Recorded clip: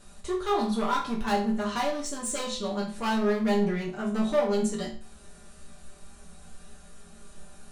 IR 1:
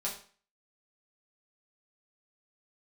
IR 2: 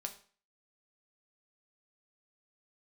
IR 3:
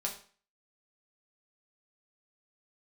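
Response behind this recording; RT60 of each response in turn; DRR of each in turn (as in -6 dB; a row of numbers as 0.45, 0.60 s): 1; 0.45, 0.40, 0.40 s; -5.0, 4.0, -1.0 dB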